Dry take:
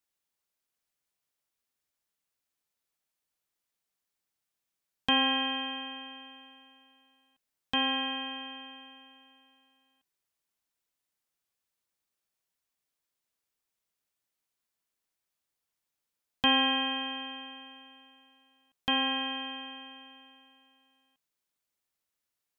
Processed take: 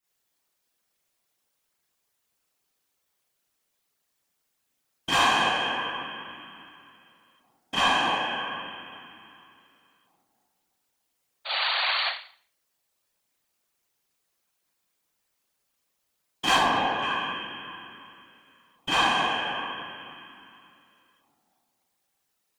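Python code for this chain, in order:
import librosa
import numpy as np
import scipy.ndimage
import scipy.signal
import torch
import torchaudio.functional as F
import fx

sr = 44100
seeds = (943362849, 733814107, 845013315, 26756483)

y = fx.high_shelf(x, sr, hz=2100.0, db=-11.5, at=(16.52, 16.99))
y = 10.0 ** (-25.0 / 20.0) * np.tanh(y / 10.0 ** (-25.0 / 20.0))
y = fx.echo_wet_bandpass(y, sr, ms=296, feedback_pct=41, hz=520.0, wet_db=-4.5)
y = fx.spec_paint(y, sr, seeds[0], shape='noise', start_s=11.45, length_s=0.6, low_hz=620.0, high_hz=4600.0, level_db=-35.0)
y = fx.rev_schroeder(y, sr, rt60_s=0.47, comb_ms=29, drr_db=-8.5)
y = fx.whisperise(y, sr, seeds[1])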